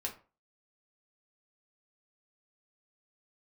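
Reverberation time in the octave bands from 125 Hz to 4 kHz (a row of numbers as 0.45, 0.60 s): 0.35, 0.35, 0.35, 0.35, 0.30, 0.20 s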